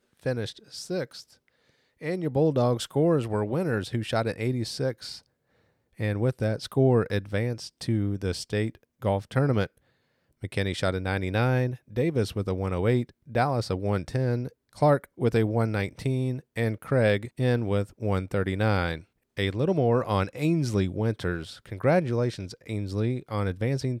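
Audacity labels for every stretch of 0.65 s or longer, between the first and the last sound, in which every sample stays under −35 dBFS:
1.210000	2.030000	silence
5.170000	6.000000	silence
9.660000	10.430000	silence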